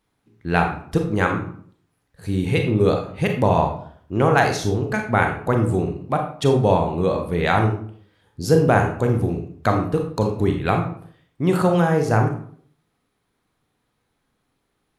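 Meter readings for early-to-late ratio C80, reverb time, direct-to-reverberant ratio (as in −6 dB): 10.0 dB, 0.60 s, 3.0 dB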